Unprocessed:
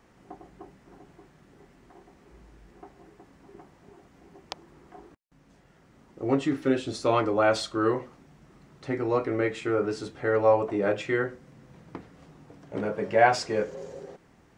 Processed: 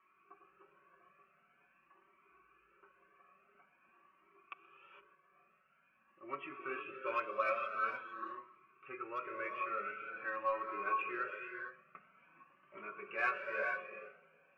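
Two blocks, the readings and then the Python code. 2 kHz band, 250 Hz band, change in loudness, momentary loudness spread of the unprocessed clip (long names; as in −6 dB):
−6.0 dB, −25.0 dB, −13.5 dB, 21 LU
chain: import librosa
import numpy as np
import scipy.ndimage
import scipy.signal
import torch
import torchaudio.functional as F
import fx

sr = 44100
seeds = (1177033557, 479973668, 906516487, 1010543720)

p1 = scipy.signal.sosfilt(scipy.signal.butter(6, 3200.0, 'lowpass', fs=sr, output='sos'), x)
p2 = fx.peak_eq(p1, sr, hz=1800.0, db=14.5, octaves=1.9)
p3 = fx.fixed_phaser(p2, sr, hz=1800.0, stages=4)
p4 = p3 + 0.7 * np.pad(p3, (int(5.3 * sr / 1000.0), 0))[:len(p3)]
p5 = fx.wow_flutter(p4, sr, seeds[0], rate_hz=2.1, depth_cents=16.0)
p6 = fx.vowel_filter(p5, sr, vowel='a')
p7 = 10.0 ** (-27.5 / 20.0) * np.tanh(p6 / 10.0 ** (-27.5 / 20.0))
p8 = p6 + F.gain(torch.from_numpy(p7), -11.0).numpy()
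p9 = fx.echo_feedback(p8, sr, ms=127, feedback_pct=53, wet_db=-22.0)
p10 = fx.rev_gated(p9, sr, seeds[1], gate_ms=490, shape='rising', drr_db=4.5)
p11 = fx.comb_cascade(p10, sr, direction='rising', hz=0.47)
y = F.gain(torch.from_numpy(p11), -1.0).numpy()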